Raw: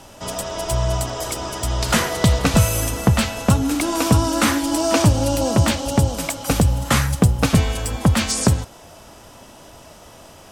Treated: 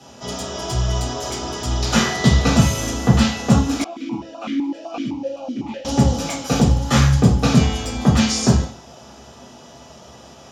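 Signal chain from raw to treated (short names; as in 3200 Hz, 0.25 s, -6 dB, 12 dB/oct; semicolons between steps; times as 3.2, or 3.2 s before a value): reverb RT60 0.45 s, pre-delay 3 ms, DRR -9 dB; 3.84–5.85 vowel sequencer 7.9 Hz; gain -10 dB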